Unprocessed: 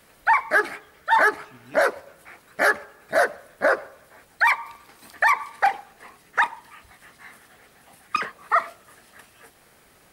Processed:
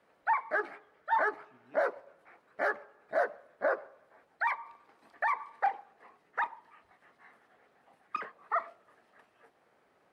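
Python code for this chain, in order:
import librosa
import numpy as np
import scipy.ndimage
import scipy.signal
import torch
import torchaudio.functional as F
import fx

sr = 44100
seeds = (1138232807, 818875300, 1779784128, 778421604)

y = fx.bandpass_q(x, sr, hz=640.0, q=0.63)
y = F.gain(torch.from_numpy(y), -8.5).numpy()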